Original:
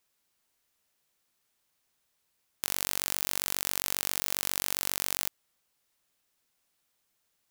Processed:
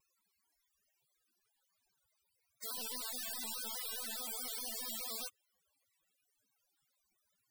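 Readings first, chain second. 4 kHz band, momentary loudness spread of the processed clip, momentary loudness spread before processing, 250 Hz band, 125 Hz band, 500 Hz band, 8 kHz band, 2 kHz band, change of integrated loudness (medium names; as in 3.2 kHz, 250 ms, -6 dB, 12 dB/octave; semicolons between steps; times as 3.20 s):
-8.5 dB, 4 LU, 3 LU, -7.5 dB, under -20 dB, -8.0 dB, -10.0 dB, -13.5 dB, -10.0 dB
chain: loudest bins only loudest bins 32; vibrato with a chosen wave square 4.8 Hz, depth 100 cents; trim +7 dB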